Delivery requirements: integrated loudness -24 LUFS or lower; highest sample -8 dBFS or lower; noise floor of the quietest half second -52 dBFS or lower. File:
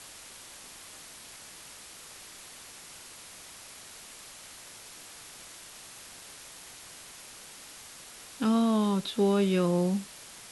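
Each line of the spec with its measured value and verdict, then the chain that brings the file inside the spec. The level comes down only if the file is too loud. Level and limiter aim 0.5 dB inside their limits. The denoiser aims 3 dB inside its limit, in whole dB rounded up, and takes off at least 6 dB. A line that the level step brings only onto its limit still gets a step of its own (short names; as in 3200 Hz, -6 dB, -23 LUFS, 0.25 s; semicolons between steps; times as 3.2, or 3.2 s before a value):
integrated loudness -27.0 LUFS: OK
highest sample -16.0 dBFS: OK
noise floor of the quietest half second -48 dBFS: fail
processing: denoiser 7 dB, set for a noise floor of -48 dBFS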